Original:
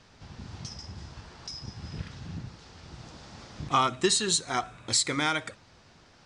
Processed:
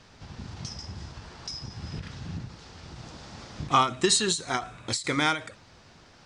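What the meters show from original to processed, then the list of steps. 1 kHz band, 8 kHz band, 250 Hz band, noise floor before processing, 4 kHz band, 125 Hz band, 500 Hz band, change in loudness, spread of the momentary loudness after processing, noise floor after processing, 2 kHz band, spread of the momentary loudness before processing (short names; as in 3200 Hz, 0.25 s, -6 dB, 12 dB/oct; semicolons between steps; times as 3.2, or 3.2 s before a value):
+2.0 dB, -1.0 dB, +2.0 dB, -58 dBFS, +0.5 dB, +2.0 dB, +1.5 dB, +0.5 dB, 21 LU, -55 dBFS, +2.0 dB, 22 LU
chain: ending taper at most 160 dB/s; gain +3 dB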